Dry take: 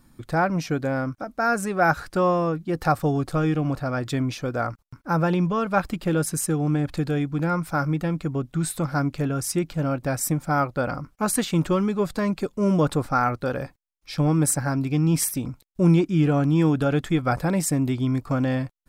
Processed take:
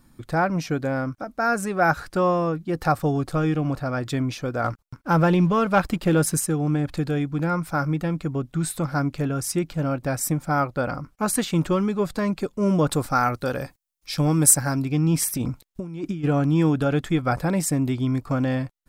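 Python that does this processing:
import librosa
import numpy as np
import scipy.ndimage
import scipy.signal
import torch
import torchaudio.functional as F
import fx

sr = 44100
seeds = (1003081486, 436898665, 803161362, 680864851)

y = fx.leveller(x, sr, passes=1, at=(4.64, 6.4))
y = fx.high_shelf(y, sr, hz=4400.0, db=10.5, at=(12.91, 14.82))
y = fx.over_compress(y, sr, threshold_db=-27.0, ratio=-1.0, at=(15.32, 16.23), fade=0.02)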